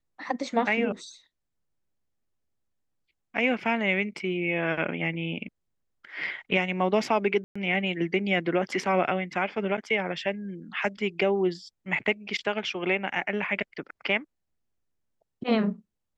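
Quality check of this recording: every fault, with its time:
7.44–7.55 s: dropout 115 ms

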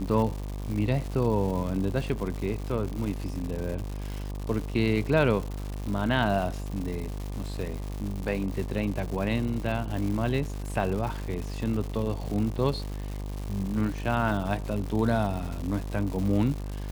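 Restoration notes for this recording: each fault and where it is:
buzz 50 Hz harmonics 24 -34 dBFS
crackle 260 per s -33 dBFS

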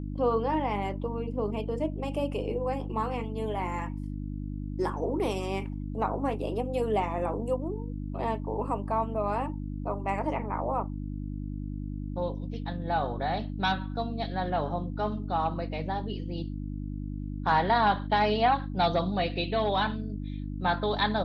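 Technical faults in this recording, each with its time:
hum 50 Hz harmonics 6 -35 dBFS

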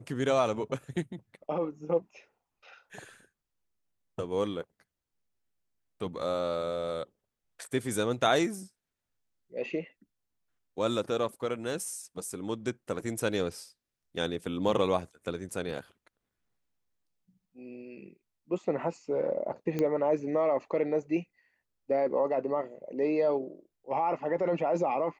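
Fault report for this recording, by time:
19.79 s: pop -18 dBFS

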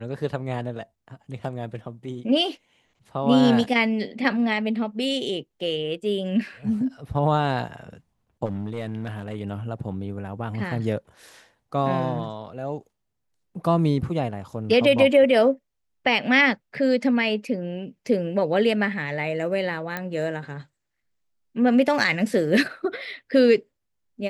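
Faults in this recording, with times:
8.45–9.35 s: clipped -24 dBFS
19.97 s: pop -14 dBFS

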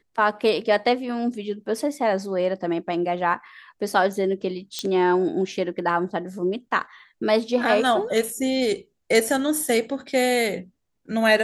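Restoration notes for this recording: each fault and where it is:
4.79 s: pop -13 dBFS

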